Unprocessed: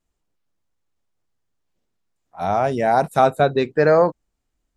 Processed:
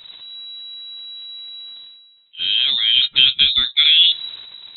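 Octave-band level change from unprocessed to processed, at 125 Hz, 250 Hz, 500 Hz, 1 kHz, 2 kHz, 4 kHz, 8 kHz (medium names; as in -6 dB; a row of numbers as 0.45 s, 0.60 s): under -15 dB, under -20 dB, under -35 dB, under -25 dB, +4.0 dB, +29.5 dB, no reading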